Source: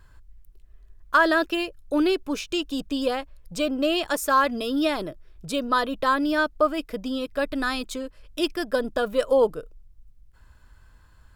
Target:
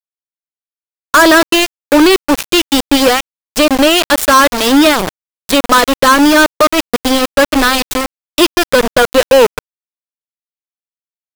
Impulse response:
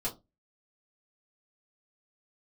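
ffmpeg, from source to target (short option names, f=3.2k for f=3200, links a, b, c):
-filter_complex "[0:a]asplit=2[a][b];[b]acompressor=threshold=-30dB:ratio=20,volume=-2dB[c];[a][c]amix=inputs=2:normalize=0,aeval=exprs='val(0)*gte(abs(val(0)),0.0708)':c=same,aeval=exprs='0.562*(cos(1*acos(clip(val(0)/0.562,-1,1)))-cos(1*PI/2))+0.0316*(cos(7*acos(clip(val(0)/0.562,-1,1)))-cos(7*PI/2))':c=same,apsyclip=19.5dB,volume=-1.5dB"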